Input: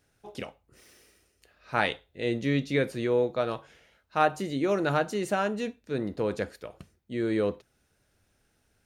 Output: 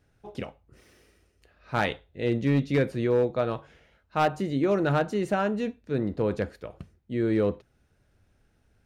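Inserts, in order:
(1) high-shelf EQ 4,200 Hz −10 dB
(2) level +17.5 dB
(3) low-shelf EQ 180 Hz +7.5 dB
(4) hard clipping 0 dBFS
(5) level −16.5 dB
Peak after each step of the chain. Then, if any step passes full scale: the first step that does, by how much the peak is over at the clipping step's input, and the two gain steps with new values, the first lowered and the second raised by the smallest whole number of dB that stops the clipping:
−10.0, +7.5, +7.0, 0.0, −16.5 dBFS
step 2, 7.0 dB
step 2 +10.5 dB, step 5 −9.5 dB

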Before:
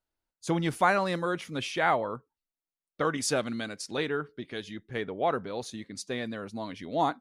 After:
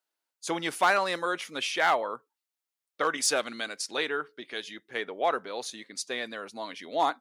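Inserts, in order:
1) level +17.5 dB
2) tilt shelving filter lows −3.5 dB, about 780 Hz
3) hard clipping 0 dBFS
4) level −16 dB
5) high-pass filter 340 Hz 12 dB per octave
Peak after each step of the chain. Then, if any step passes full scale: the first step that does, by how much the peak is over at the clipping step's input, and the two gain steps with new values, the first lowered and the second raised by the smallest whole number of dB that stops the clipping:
+6.0, +8.5, 0.0, −16.0, −11.5 dBFS
step 1, 8.5 dB
step 1 +8.5 dB, step 4 −7 dB

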